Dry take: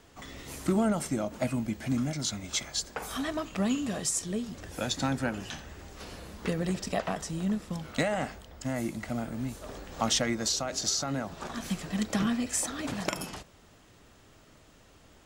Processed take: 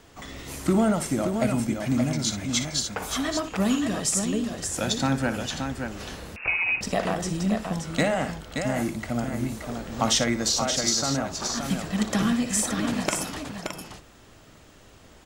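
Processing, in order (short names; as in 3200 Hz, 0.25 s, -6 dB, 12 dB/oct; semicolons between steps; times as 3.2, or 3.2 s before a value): tapped delay 59/575 ms -11.5/-6 dB; 6.36–6.81 inverted band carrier 2700 Hz; gain +4.5 dB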